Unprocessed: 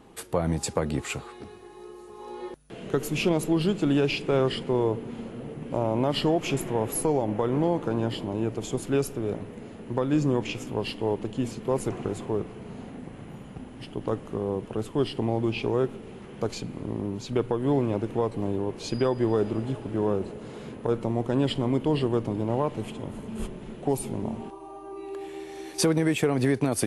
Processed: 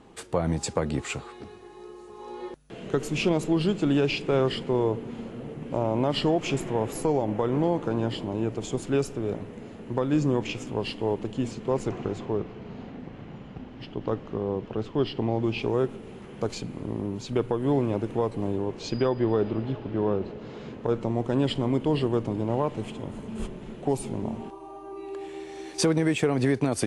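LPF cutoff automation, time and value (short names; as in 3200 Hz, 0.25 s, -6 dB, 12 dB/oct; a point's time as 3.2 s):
LPF 24 dB/oct
11.34 s 8800 Hz
12.51 s 5400 Hz
15.2 s 5400 Hz
15.78 s 10000 Hz
18.47 s 10000 Hz
19.24 s 4800 Hz
20.2 s 4800 Hz
21.31 s 9000 Hz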